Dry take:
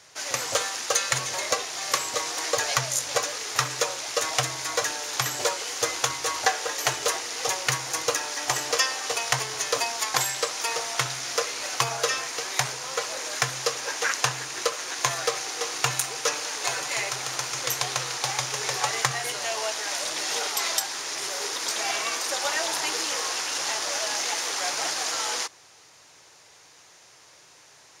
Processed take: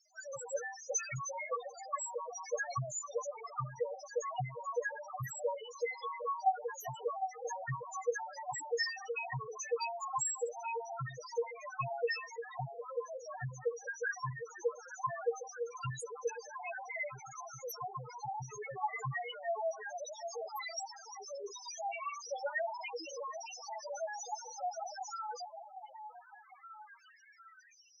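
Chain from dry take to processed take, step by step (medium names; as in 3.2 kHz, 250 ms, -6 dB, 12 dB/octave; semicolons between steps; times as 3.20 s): repeats whose band climbs or falls 755 ms, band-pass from 690 Hz, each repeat 0.7 oct, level -7.5 dB; loudest bins only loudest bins 2; trim -1 dB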